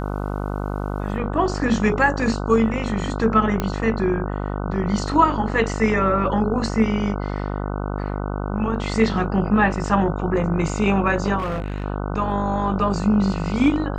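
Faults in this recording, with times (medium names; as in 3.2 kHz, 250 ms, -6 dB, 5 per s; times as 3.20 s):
buzz 50 Hz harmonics 30 -26 dBFS
3.60 s: pop -9 dBFS
11.38–11.84 s: clipped -21.5 dBFS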